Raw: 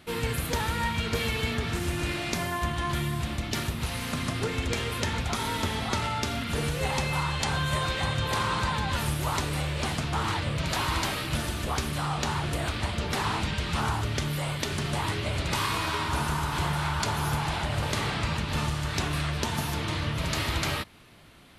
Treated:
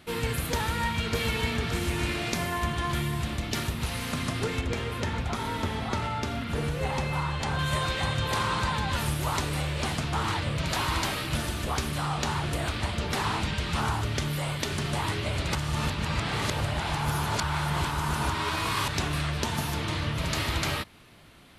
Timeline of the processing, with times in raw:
0:00.67–0:01.72: delay throw 570 ms, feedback 60%, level −9 dB
0:04.61–0:07.59: high-shelf EQ 2,700 Hz −8.5 dB
0:15.55–0:18.88: reverse

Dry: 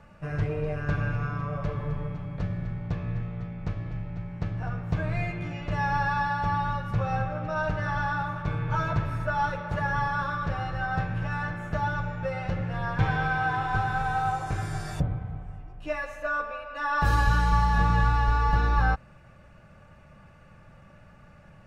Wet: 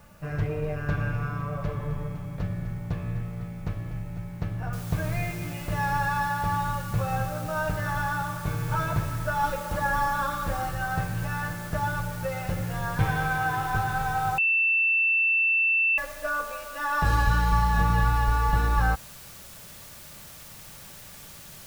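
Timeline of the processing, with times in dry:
0:04.73: noise floor change −63 dB −46 dB
0:09.43–0:10.69: comb filter 3.7 ms
0:14.38–0:15.98: beep over 2,670 Hz −19.5 dBFS

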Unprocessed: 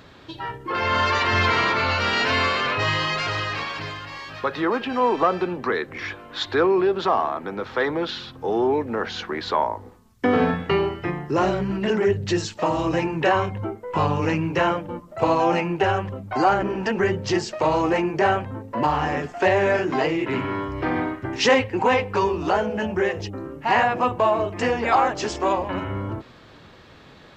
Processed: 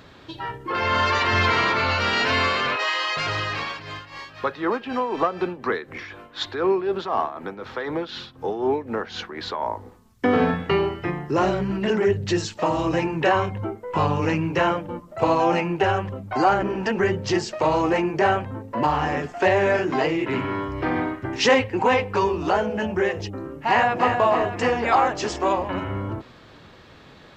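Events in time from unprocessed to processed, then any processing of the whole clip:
0:02.76–0:03.17: Bessel high-pass filter 600 Hz, order 8
0:03.70–0:09.67: amplitude tremolo 4 Hz, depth 65%
0:23.68–0:24.16: delay throw 310 ms, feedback 55%, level −6 dB

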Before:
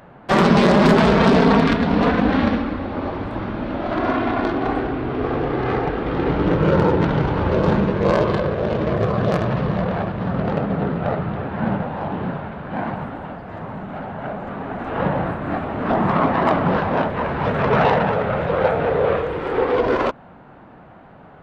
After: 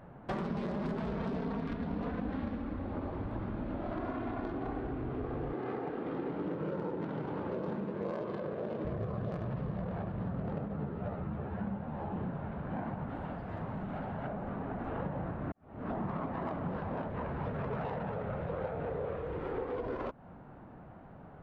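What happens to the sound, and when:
0:05.53–0:08.85: Chebyshev high-pass filter 240 Hz
0:10.68–0:12.16: string-ensemble chorus
0:13.09–0:14.28: high-shelf EQ 2,500 Hz +8 dB
0:15.52–0:16.04: fade in quadratic
whole clip: low-shelf EQ 170 Hz +7 dB; downward compressor, threshold −25 dBFS; high-shelf EQ 2,100 Hz −9 dB; level −8.5 dB

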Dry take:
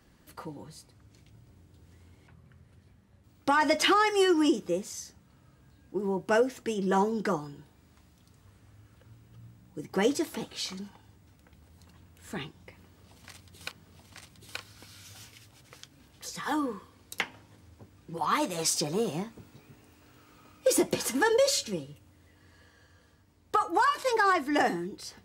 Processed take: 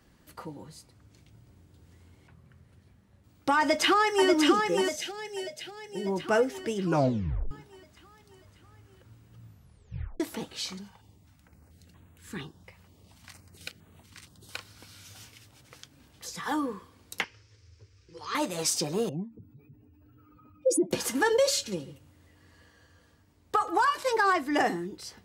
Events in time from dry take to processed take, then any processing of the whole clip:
0:03.59–0:04.29: delay throw 590 ms, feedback 55%, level −3.5 dB
0:04.96–0:06.07: phaser with its sweep stopped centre 300 Hz, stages 6
0:06.82: tape stop 0.69 s
0:09.44: tape stop 0.76 s
0:10.78–0:14.54: notch on a step sequencer 4.3 Hz 300–5,100 Hz
0:17.24–0:18.35: drawn EQ curve 110 Hz 0 dB, 180 Hz −21 dB, 270 Hz −16 dB, 440 Hz −2 dB, 710 Hz −22 dB, 1,200 Hz −8 dB, 2,400 Hz 0 dB, 3,500 Hz −3 dB, 5,400 Hz +8 dB, 13,000 Hz −25 dB
0:19.09–0:20.91: expanding power law on the bin magnitudes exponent 2.3
0:21.58–0:23.86: single-tap delay 137 ms −17 dB

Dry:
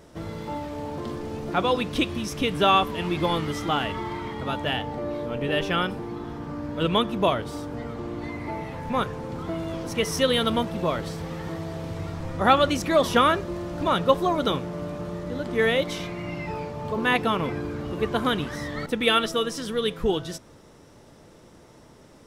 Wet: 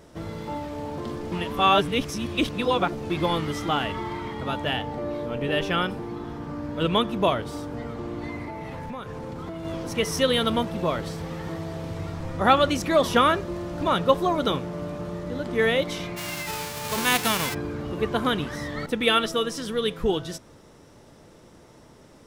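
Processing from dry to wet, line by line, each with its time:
0:01.32–0:03.10: reverse
0:08.43–0:09.65: downward compressor 16 to 1, threshold −30 dBFS
0:16.16–0:17.53: spectral envelope flattened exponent 0.3

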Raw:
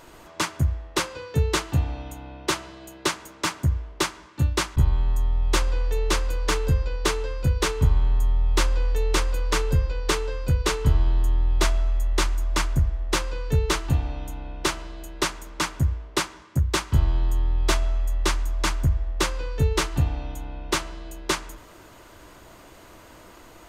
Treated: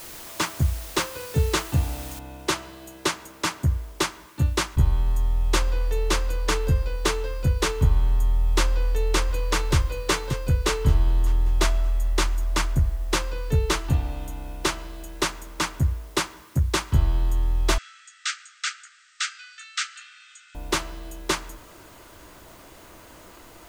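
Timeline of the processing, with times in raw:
0:02.19: noise floor change −41 dB −56 dB
0:08.72–0:09.75: delay throw 580 ms, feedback 35%, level −3.5 dB
0:17.78–0:20.55: linear-phase brick-wall band-pass 1,200–8,600 Hz

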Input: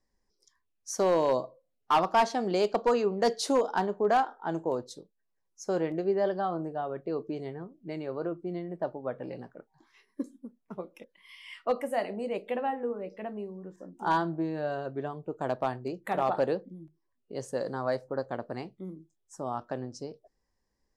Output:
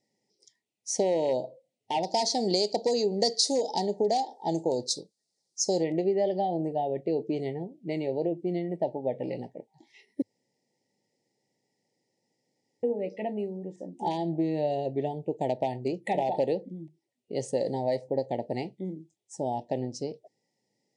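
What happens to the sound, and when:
0:02.03–0:05.84: high shelf with overshoot 3,600 Hz +9 dB, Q 3
0:10.22–0:12.83: fill with room tone
whole clip: downward compressor, threshold −28 dBFS; Chebyshev band-stop filter 890–1,900 Hz, order 4; brick-wall band-pass 100–10,000 Hz; level +6 dB

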